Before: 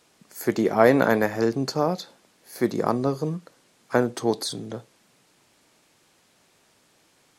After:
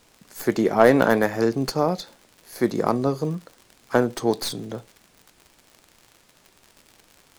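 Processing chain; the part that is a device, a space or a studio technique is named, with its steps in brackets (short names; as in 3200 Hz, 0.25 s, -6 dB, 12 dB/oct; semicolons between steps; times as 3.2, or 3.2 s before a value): record under a worn stylus (tracing distortion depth 0.046 ms; crackle 80/s -37 dBFS; pink noise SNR 40 dB); gain +1.5 dB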